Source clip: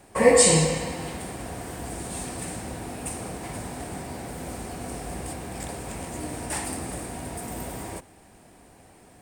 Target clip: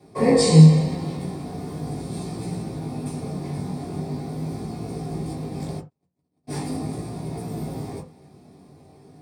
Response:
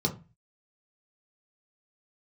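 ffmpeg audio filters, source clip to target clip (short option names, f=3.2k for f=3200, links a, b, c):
-filter_complex "[0:a]flanger=delay=18:depth=3.2:speed=0.41,asplit=3[a][b][c];[a]afade=t=out:st=5.79:d=0.02[d];[b]agate=range=-55dB:threshold=-31dB:ratio=16:detection=peak,afade=t=in:st=5.79:d=0.02,afade=t=out:st=6.47:d=0.02[e];[c]afade=t=in:st=6.47:d=0.02[f];[d][e][f]amix=inputs=3:normalize=0[g];[1:a]atrim=start_sample=2205,atrim=end_sample=4410[h];[g][h]afir=irnorm=-1:irlink=0,volume=-7.5dB"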